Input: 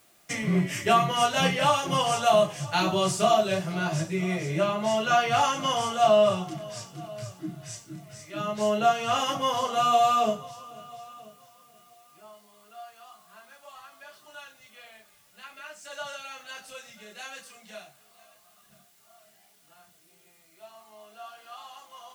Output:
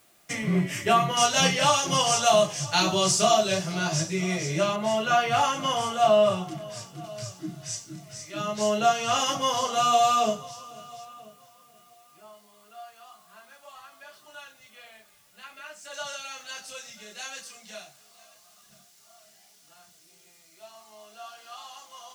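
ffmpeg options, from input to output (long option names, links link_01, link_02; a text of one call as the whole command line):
ffmpeg -i in.wav -af "asetnsamples=nb_out_samples=441:pad=0,asendcmd='1.17 equalizer g 11.5;4.76 equalizer g 0;7.04 equalizer g 8.5;11.05 equalizer g 1.5;15.94 equalizer g 9',equalizer=frequency=5700:width_type=o:width=1.2:gain=0" out.wav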